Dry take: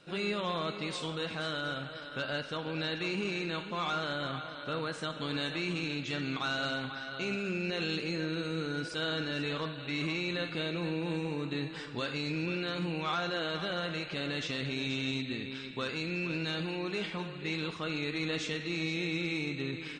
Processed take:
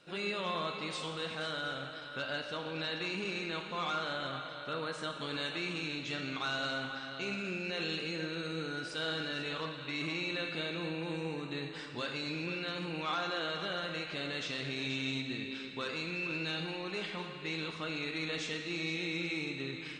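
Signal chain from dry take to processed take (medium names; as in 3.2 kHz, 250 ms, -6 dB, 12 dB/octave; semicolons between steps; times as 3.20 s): bass shelf 270 Hz -5.5 dB; Schroeder reverb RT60 1.7 s, combs from 29 ms, DRR 7 dB; trim -2 dB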